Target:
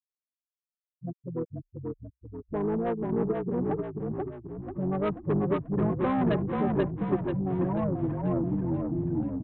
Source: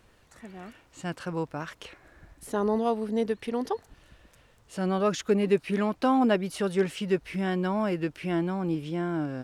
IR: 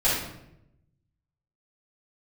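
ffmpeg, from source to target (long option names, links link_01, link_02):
-filter_complex "[0:a]afftfilt=real='re*gte(hypot(re,im),0.158)':imag='im*gte(hypot(re,im),0.158)':win_size=1024:overlap=0.75,asplit=2[link_01][link_02];[link_02]asetrate=33038,aresample=44100,atempo=1.33484,volume=-6dB[link_03];[link_01][link_03]amix=inputs=2:normalize=0,aresample=8000,asoftclip=type=tanh:threshold=-22.5dB,aresample=44100,asplit=8[link_04][link_05][link_06][link_07][link_08][link_09][link_10][link_11];[link_05]adelay=486,afreqshift=-32,volume=-3dB[link_12];[link_06]adelay=972,afreqshift=-64,volume=-8.5dB[link_13];[link_07]adelay=1458,afreqshift=-96,volume=-14dB[link_14];[link_08]adelay=1944,afreqshift=-128,volume=-19.5dB[link_15];[link_09]adelay=2430,afreqshift=-160,volume=-25.1dB[link_16];[link_10]adelay=2916,afreqshift=-192,volume=-30.6dB[link_17];[link_11]adelay=3402,afreqshift=-224,volume=-36.1dB[link_18];[link_04][link_12][link_13][link_14][link_15][link_16][link_17][link_18]amix=inputs=8:normalize=0"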